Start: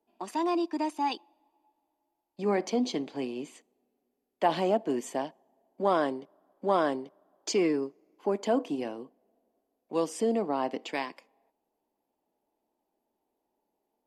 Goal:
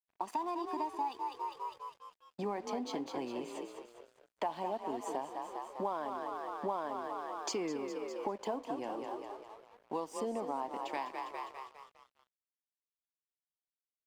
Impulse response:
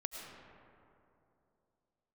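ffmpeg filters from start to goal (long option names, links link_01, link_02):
-filter_complex "[0:a]equalizer=frequency=920:width=2:gain=11.5,asplit=7[link_01][link_02][link_03][link_04][link_05][link_06][link_07];[link_02]adelay=202,afreqshift=38,volume=-8.5dB[link_08];[link_03]adelay=404,afreqshift=76,volume=-14.3dB[link_09];[link_04]adelay=606,afreqshift=114,volume=-20.2dB[link_10];[link_05]adelay=808,afreqshift=152,volume=-26dB[link_11];[link_06]adelay=1010,afreqshift=190,volume=-31.9dB[link_12];[link_07]adelay=1212,afreqshift=228,volume=-37.7dB[link_13];[link_01][link_08][link_09][link_10][link_11][link_12][link_13]amix=inputs=7:normalize=0,acompressor=threshold=-35dB:ratio=5,aeval=exprs='sgn(val(0))*max(abs(val(0))-0.001,0)':channel_layout=same"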